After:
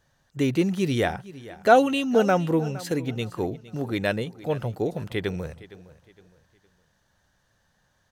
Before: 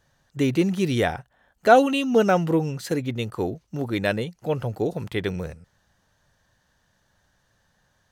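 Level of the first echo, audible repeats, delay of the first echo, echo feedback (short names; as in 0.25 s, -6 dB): -18.0 dB, 2, 0.462 s, 34%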